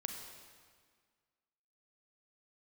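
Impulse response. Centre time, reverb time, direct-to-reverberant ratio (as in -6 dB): 51 ms, 1.7 s, 3.5 dB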